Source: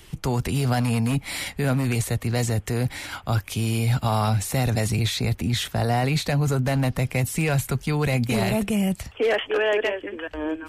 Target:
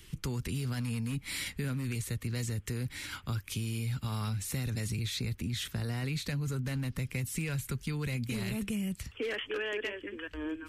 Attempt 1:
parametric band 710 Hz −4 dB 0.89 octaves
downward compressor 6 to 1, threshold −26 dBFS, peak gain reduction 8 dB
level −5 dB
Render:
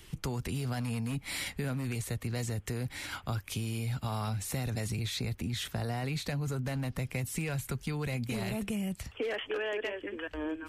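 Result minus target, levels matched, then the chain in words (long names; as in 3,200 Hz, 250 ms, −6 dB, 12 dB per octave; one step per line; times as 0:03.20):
1,000 Hz band +5.5 dB
parametric band 710 Hz −16 dB 0.89 octaves
downward compressor 6 to 1, threshold −26 dBFS, peak gain reduction 7.5 dB
level −5 dB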